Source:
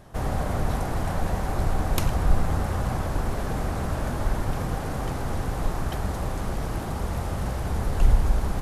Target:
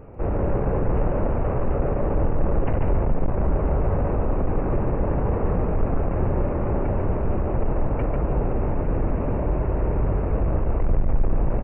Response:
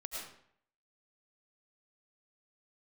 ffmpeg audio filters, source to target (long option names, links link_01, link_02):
-af "lowpass=frequency=1400:poles=1,equalizer=frequency=540:width=1.5:gain=3,aresample=8000,asoftclip=type=tanh:threshold=-23dB,aresample=44100,aecho=1:1:107:0.596,asetrate=32667,aresample=44100,volume=6.5dB"